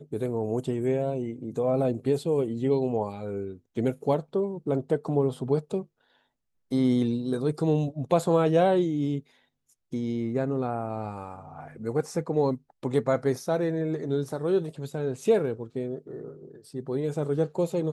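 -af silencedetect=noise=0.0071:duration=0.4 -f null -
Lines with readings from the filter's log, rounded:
silence_start: 5.84
silence_end: 6.71 | silence_duration: 0.87
silence_start: 9.20
silence_end: 9.93 | silence_duration: 0.72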